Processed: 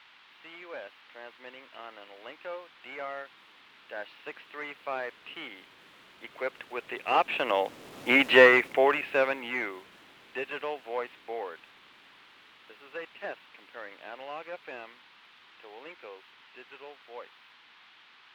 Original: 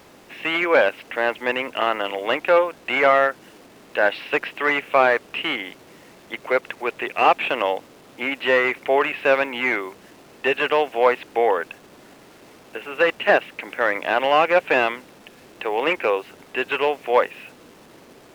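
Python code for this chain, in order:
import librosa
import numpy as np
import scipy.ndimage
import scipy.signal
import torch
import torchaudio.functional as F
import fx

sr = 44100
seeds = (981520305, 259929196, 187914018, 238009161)

y = fx.doppler_pass(x, sr, speed_mps=5, closest_m=1.3, pass_at_s=8.21)
y = fx.dmg_noise_band(y, sr, seeds[0], low_hz=840.0, high_hz=3600.0, level_db=-61.0)
y = F.gain(torch.from_numpy(y), 4.0).numpy()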